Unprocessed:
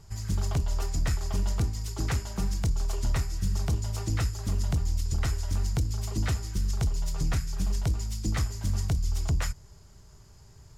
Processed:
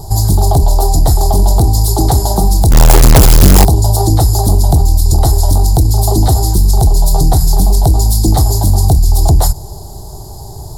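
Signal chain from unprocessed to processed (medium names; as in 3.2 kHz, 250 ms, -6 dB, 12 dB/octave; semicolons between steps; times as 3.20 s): FFT filter 140 Hz 0 dB, 220 Hz -3 dB, 350 Hz +6 dB, 530 Hz 0 dB, 780 Hz +12 dB, 1.3 kHz -14 dB, 2.6 kHz -25 dB, 4 kHz +2 dB, 6.3 kHz -5 dB, 10 kHz +10 dB; 2.71–3.65 s: companded quantiser 2-bit; loudness maximiser +25 dB; trim -1 dB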